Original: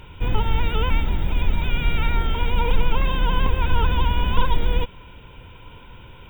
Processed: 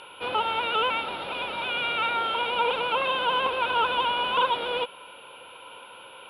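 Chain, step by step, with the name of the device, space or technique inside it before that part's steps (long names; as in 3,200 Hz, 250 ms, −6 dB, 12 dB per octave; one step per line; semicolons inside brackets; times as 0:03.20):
toy sound module (linearly interpolated sample-rate reduction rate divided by 4×; switching amplifier with a slow clock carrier 11,000 Hz; loudspeaker in its box 530–4,800 Hz, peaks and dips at 540 Hz +7 dB, 780 Hz +3 dB, 1,300 Hz +7 dB, 1,900 Hz −7 dB, 2,800 Hz +6 dB, 4,000 Hz +9 dB)
level +1.5 dB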